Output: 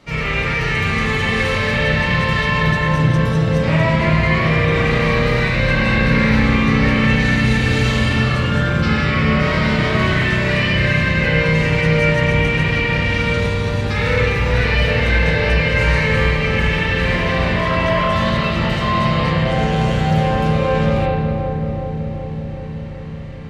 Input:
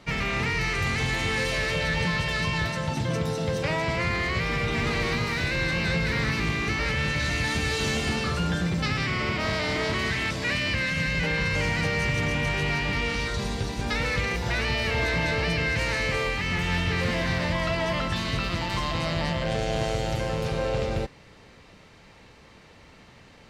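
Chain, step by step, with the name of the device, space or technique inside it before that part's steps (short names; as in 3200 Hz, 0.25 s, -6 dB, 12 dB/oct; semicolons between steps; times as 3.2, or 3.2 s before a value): dub delay into a spring reverb (darkening echo 0.377 s, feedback 81%, low-pass 870 Hz, level -4 dB; spring tank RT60 1.3 s, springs 32/50 ms, chirp 40 ms, DRR -8 dB)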